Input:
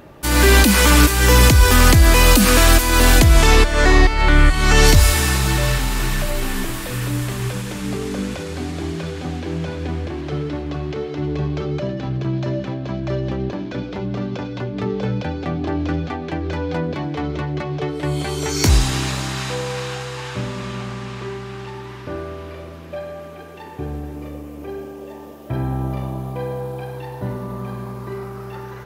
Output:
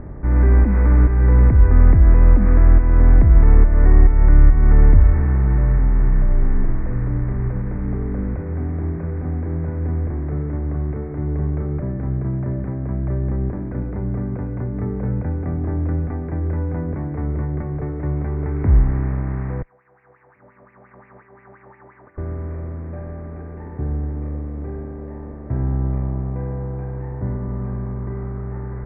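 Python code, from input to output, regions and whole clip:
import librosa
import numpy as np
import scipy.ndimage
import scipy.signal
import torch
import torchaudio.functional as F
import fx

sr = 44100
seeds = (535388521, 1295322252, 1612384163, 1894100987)

y = fx.chain(x, sr, fx.riaa(side='recording'),
    fx.over_compress(threshold_db=-34.0, ratio=-0.5),
    fx.wah_lfo(hz=5.7, low_hz=570.0, high_hz=2600.0, q=6.1), at=(19.62, 22.18))
y = fx.bin_compress(y, sr, power=0.6)
y = scipy.signal.sosfilt(scipy.signal.ellip(4, 1.0, 40, 2100.0, 'lowpass', fs=sr, output='sos'), y)
y = fx.tilt_eq(y, sr, slope=-4.0)
y = y * librosa.db_to_amplitude(-16.0)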